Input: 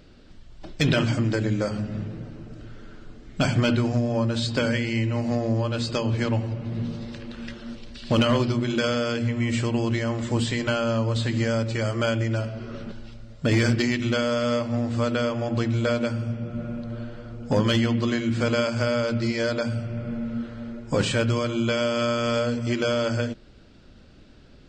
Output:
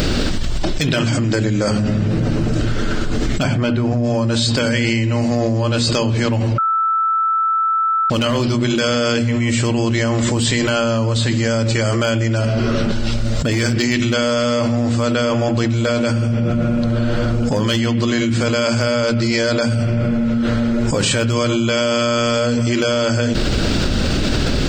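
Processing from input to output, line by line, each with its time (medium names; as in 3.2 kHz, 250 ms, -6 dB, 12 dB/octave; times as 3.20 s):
3.42–4.03 s: low-pass 2.1 kHz -> 1.3 kHz 6 dB/octave
6.58–8.10 s: bleep 1.32 kHz -19 dBFS
whole clip: treble shelf 5.9 kHz +10.5 dB; level flattener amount 100%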